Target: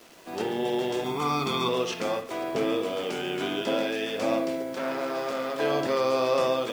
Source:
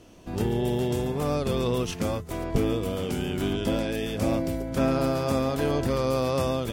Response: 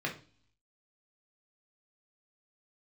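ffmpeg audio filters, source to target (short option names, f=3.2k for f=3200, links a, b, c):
-filter_complex "[0:a]asettb=1/sr,asplit=3[a][b][c];[a]atrim=end=4.734[d];[b]atrim=start=4.73:end=5.6,asetpts=PTS-STARTPTS,afade=t=in:d=0.004:c=qsin,afade=t=out:st=0.866:d=0.004:c=qsin,aeval=exprs='(tanh(22.4*val(0)+0.4)-tanh(0.4))/22.4':c=same[e];[c]atrim=start=5.596[f];[d][e]acrossfade=d=0.004:c1=hsin:c2=qsin[g];[g][f]acrossfade=d=0.004:c1=qsin:c2=hsin,highpass=420,lowpass=5.6k,acrusher=bits=8:mix=0:aa=0.000001,asettb=1/sr,asplit=3[h][i][j];[h]atrim=end=1.044[k];[i]atrim=start=1.04:end=1.69,asetpts=PTS-STARTPTS,afade=t=in:d=0.004:c=qsin,afade=t=out:st=0.646:d=0.004:c=qsin,aecho=1:1:0.9:0.95,atrim=end_sample=28665[l];[j]atrim=start=1.686[m];[k][l]acrossfade=d=0.004:c1=hsin:c2=qsin[n];[n][m]acrossfade=d=0.004:c1=qsin:c2=hsin,asplit=2[o][p];[1:a]atrim=start_sample=2205,adelay=50[q];[p][q]afir=irnorm=-1:irlink=0,volume=-12dB[r];[o][r]amix=inputs=2:normalize=0,volume=3dB"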